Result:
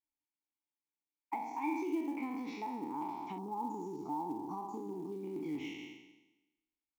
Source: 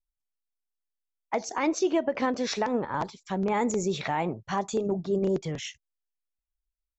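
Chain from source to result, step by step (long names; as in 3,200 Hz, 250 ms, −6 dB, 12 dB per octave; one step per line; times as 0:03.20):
peak hold with a decay on every bin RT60 1.02 s
0:01.35–0:01.82: comb filter 1.2 ms, depth 63%
0:03.38–0:05.12: elliptic band-stop filter 1,200–5,200 Hz, stop band 40 dB
downward compressor 8 to 1, threshold −34 dBFS, peak gain reduction 15 dB
formant filter u
floating-point word with a short mantissa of 4 bits
level +9 dB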